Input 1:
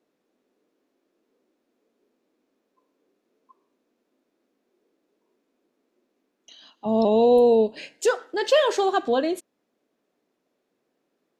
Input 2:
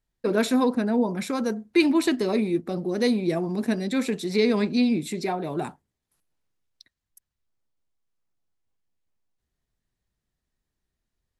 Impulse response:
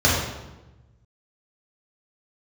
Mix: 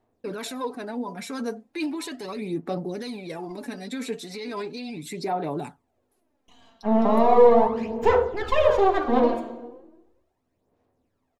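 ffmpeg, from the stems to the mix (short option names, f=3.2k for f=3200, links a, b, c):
-filter_complex "[0:a]aeval=exprs='max(val(0),0)':c=same,lowpass=f=1k:p=1,volume=3dB,asplit=2[a][b];[b]volume=-21.5dB[c];[1:a]equalizer=f=840:t=o:w=0.32:g=4,aecho=1:1:7:0.4,alimiter=limit=-19.5dB:level=0:latency=1:release=21,volume=-4.5dB[d];[2:a]atrim=start_sample=2205[e];[c][e]afir=irnorm=-1:irlink=0[f];[a][d][f]amix=inputs=3:normalize=0,lowshelf=f=150:g=-10.5,aphaser=in_gain=1:out_gain=1:delay=4.4:decay=0.56:speed=0.37:type=sinusoidal"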